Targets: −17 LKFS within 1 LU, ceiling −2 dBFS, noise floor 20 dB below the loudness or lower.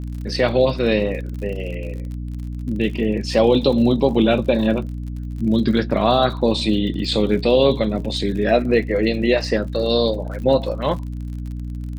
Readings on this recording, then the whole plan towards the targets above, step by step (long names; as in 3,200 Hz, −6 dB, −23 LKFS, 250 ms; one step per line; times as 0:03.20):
crackle rate 49 per second; mains hum 60 Hz; hum harmonics up to 300 Hz; level of the hum −26 dBFS; integrated loudness −19.5 LKFS; sample peak −3.0 dBFS; target loudness −17.0 LKFS
→ click removal
mains-hum notches 60/120/180/240/300 Hz
level +2.5 dB
brickwall limiter −2 dBFS